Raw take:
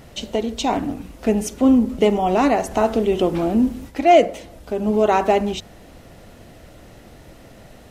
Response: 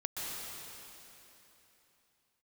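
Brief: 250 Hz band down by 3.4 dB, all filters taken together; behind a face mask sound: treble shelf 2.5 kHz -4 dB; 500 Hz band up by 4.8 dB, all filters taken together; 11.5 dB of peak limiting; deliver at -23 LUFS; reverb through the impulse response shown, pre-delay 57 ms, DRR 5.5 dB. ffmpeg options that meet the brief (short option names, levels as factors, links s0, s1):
-filter_complex "[0:a]equalizer=f=250:t=o:g=-6.5,equalizer=f=500:t=o:g=8.5,alimiter=limit=0.299:level=0:latency=1,asplit=2[s0][s1];[1:a]atrim=start_sample=2205,adelay=57[s2];[s1][s2]afir=irnorm=-1:irlink=0,volume=0.355[s3];[s0][s3]amix=inputs=2:normalize=0,highshelf=f=2500:g=-4,volume=0.75"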